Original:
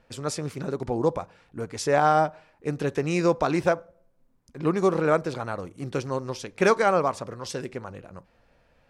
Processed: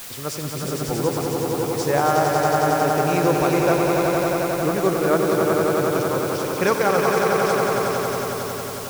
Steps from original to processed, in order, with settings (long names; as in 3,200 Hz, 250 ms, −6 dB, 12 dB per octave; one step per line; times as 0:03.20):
echo that builds up and dies away 91 ms, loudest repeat 5, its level −5 dB
bit-depth reduction 6 bits, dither triangular